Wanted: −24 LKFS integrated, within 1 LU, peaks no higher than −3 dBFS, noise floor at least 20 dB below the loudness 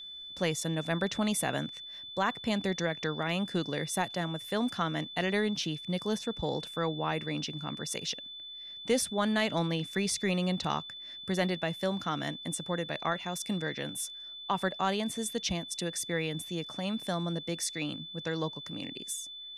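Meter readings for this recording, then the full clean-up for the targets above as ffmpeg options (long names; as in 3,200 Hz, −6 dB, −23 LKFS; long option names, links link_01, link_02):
interfering tone 3,500 Hz; level of the tone −42 dBFS; integrated loudness −33.0 LKFS; sample peak −16.5 dBFS; target loudness −24.0 LKFS
→ -af "bandreject=frequency=3500:width=30"
-af "volume=9dB"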